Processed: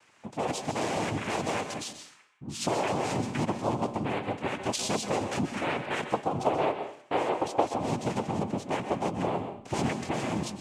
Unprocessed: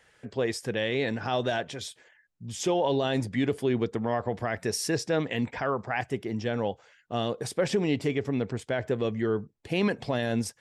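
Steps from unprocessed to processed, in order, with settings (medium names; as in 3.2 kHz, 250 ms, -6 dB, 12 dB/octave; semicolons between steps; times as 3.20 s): 6.13–7.70 s: high-order bell 660 Hz +14 dB; compression 5:1, threshold -25 dBFS, peak gain reduction 15.5 dB; noise-vocoded speech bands 4; on a send: reverberation RT60 0.50 s, pre-delay 121 ms, DRR 8 dB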